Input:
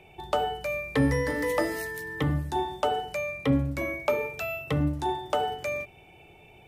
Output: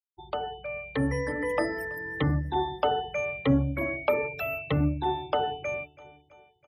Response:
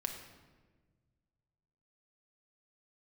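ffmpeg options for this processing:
-af "afftfilt=real='re*gte(hypot(re,im),0.0178)':imag='im*gte(hypot(re,im),0.0178)':win_size=1024:overlap=0.75,dynaudnorm=framelen=560:gausssize=5:maxgain=7dB,aecho=1:1:328|656|984|1312:0.0794|0.0453|0.0258|0.0147,volume=-6dB"

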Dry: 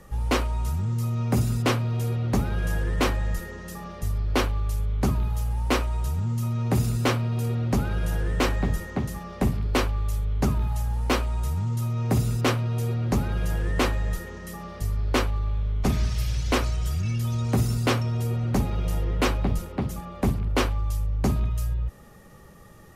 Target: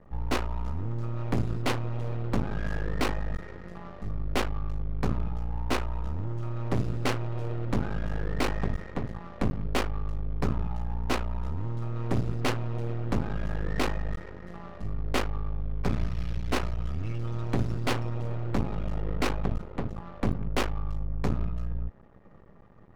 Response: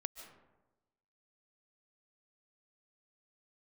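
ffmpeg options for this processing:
-af "aeval=exprs='max(val(0),0)':channel_layout=same,adynamicsmooth=sensitivity=6.5:basefreq=1300"

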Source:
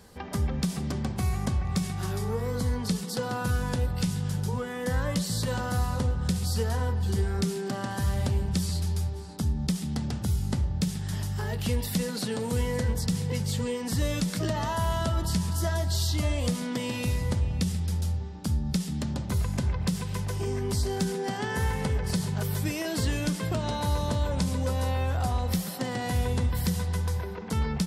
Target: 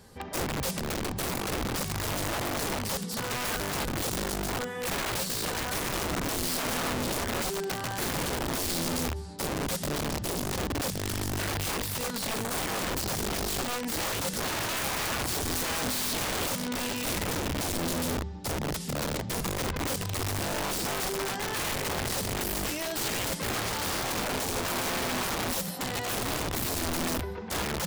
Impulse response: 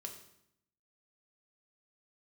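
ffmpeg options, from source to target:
-af "flanger=delay=7.6:depth=5.7:regen=-56:speed=0.26:shape=sinusoidal,bandreject=frequency=250.7:width_type=h:width=4,bandreject=frequency=501.4:width_type=h:width=4,bandreject=frequency=752.1:width_type=h:width=4,bandreject=frequency=1002.8:width_type=h:width=4,bandreject=frequency=1253.5:width_type=h:width=4,bandreject=frequency=1504.2:width_type=h:width=4,bandreject=frequency=1754.9:width_type=h:width=4,bandreject=frequency=2005.6:width_type=h:width=4,bandreject=frequency=2256.3:width_type=h:width=4,bandreject=frequency=2507:width_type=h:width=4,bandreject=frequency=2757.7:width_type=h:width=4,bandreject=frequency=3008.4:width_type=h:width=4,bandreject=frequency=3259.1:width_type=h:width=4,bandreject=frequency=3509.8:width_type=h:width=4,bandreject=frequency=3760.5:width_type=h:width=4,bandreject=frequency=4011.2:width_type=h:width=4,bandreject=frequency=4261.9:width_type=h:width=4,bandreject=frequency=4512.6:width_type=h:width=4,bandreject=frequency=4763.3:width_type=h:width=4,bandreject=frequency=5014:width_type=h:width=4,bandreject=frequency=5264.7:width_type=h:width=4,bandreject=frequency=5515.4:width_type=h:width=4,bandreject=frequency=5766.1:width_type=h:width=4,bandreject=frequency=6016.8:width_type=h:width=4,bandreject=frequency=6267.5:width_type=h:width=4,bandreject=frequency=6518.2:width_type=h:width=4,bandreject=frequency=6768.9:width_type=h:width=4,bandreject=frequency=7019.6:width_type=h:width=4,bandreject=frequency=7270.3:width_type=h:width=4,bandreject=frequency=7521:width_type=h:width=4,aeval=exprs='(mod(31.6*val(0)+1,2)-1)/31.6':channel_layout=same,volume=4dB"

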